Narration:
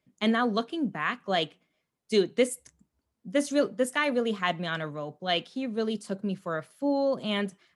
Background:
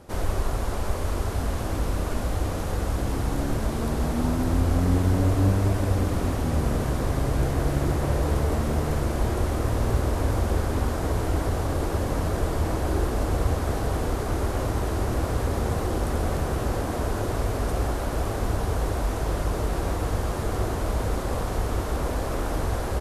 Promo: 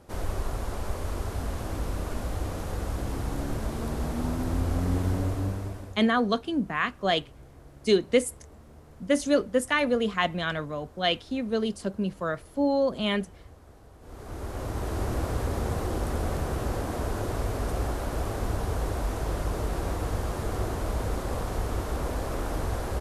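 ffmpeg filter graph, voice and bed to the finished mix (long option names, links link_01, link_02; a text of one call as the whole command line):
ffmpeg -i stem1.wav -i stem2.wav -filter_complex "[0:a]adelay=5750,volume=2dB[link_01];[1:a]volume=17.5dB,afade=type=out:start_time=5.09:duration=0.93:silence=0.0891251,afade=type=in:start_time=14:duration=1.03:silence=0.0749894[link_02];[link_01][link_02]amix=inputs=2:normalize=0" out.wav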